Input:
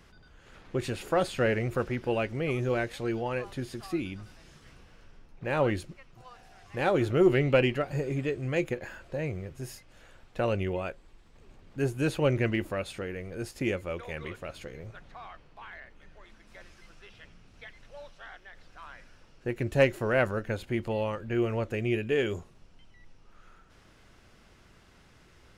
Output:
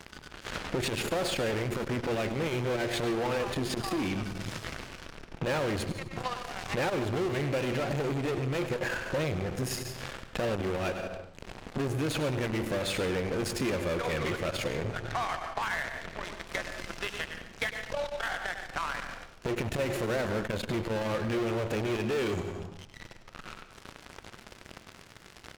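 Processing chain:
low-shelf EQ 66 Hz −8.5 dB
in parallel at −4 dB: fuzz pedal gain 44 dB, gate −53 dBFS
on the sum: high-shelf EQ 7,700 Hz −5.5 dB
slap from a distant wall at 17 metres, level −11 dB
on a send at −13 dB: convolution reverb RT60 0.60 s, pre-delay 130 ms
on the sum: downward compressor 6 to 1, threshold −28 dBFS, peak gain reduction 16 dB
saturating transformer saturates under 420 Hz

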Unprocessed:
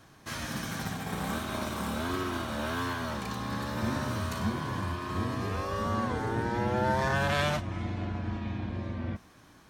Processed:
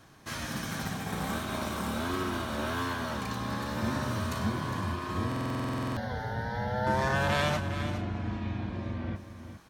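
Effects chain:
0:05.50–0:06.87: phaser with its sweep stopped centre 1,700 Hz, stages 8
single-tap delay 408 ms −10.5 dB
buffer that repeats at 0:05.27, samples 2,048, times 14

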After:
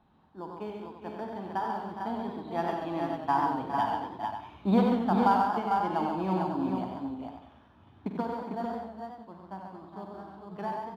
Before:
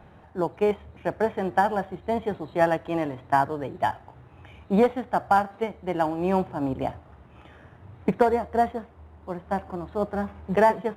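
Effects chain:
source passing by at 0:04.73, 5 m/s, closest 7.5 metres
octave-band graphic EQ 125/250/500/1,000/2,000/4,000/8,000 Hz −4/+10/−6/+8/−6/+11/−5 dB
multi-tap delay 48/73/135/412/449 ms −10/−11.5/−6/−11/−5 dB
feedback echo with a swinging delay time 93 ms, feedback 37%, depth 85 cents, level −6 dB
level −8 dB

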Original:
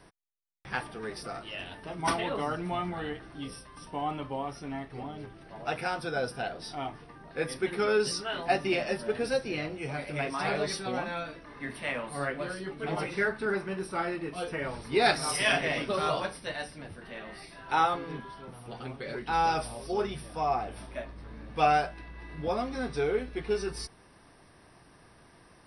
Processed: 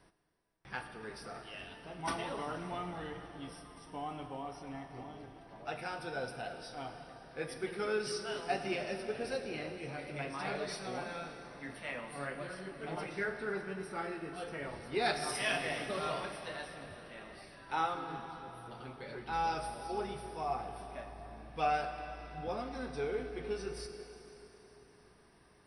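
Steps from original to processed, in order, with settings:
dense smooth reverb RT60 4 s, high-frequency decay 0.95×, DRR 6 dB
level −8.5 dB

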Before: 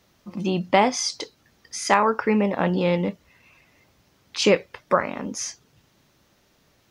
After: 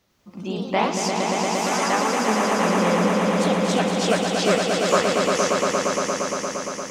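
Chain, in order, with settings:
delay with pitch and tempo change per echo 102 ms, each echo +2 semitones, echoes 3
speech leveller within 3 dB 0.5 s
echo that builds up and dies away 116 ms, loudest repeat 5, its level −5 dB
level −3.5 dB

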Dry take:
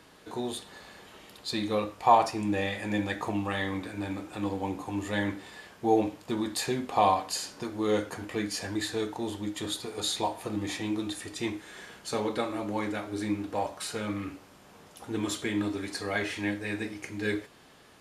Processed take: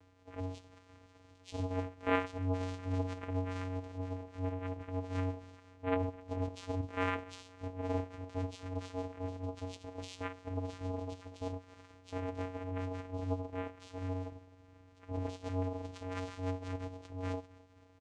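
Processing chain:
pitch shifter swept by a sawtooth +6.5 semitones, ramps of 397 ms
repeating echo 259 ms, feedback 56%, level −22 dB
channel vocoder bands 4, square 92.4 Hz
level −6 dB

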